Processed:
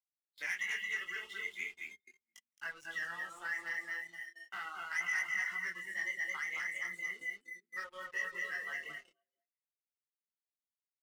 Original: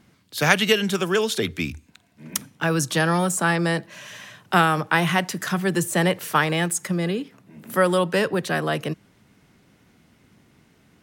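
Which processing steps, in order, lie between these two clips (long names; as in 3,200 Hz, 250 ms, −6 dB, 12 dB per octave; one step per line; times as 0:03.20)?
delay that plays each chunk backwards 188 ms, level −13 dB
single-tap delay 219 ms −4 dB
downward compressor 3 to 1, threshold −21 dBFS, peak gain reduction 8.5 dB
resonant band-pass 2,000 Hz, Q 12
single-tap delay 471 ms −8 dB
noise reduction from a noise print of the clip's start 28 dB
noise gate −59 dBFS, range −7 dB
leveller curve on the samples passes 3
micro pitch shift up and down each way 13 cents
level −4.5 dB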